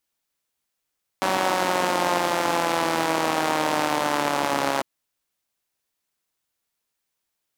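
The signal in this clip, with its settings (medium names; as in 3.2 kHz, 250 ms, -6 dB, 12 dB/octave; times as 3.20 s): four-cylinder engine model, changing speed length 3.60 s, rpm 5700, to 4100, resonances 320/570/810 Hz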